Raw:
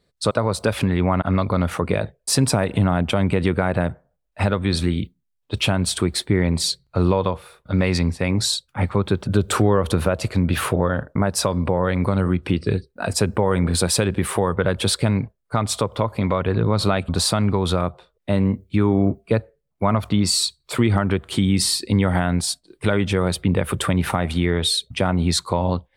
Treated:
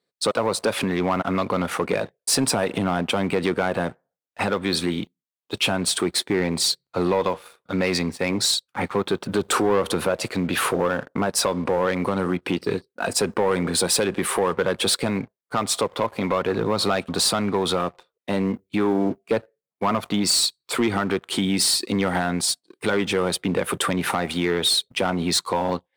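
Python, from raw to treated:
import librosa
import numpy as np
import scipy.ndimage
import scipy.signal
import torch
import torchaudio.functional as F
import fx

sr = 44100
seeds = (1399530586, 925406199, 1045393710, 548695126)

y = scipy.signal.sosfilt(scipy.signal.butter(2, 260.0, 'highpass', fs=sr, output='sos'), x)
y = fx.notch(y, sr, hz=610.0, q=12.0)
y = fx.leveller(y, sr, passes=2)
y = F.gain(torch.from_numpy(y), -5.0).numpy()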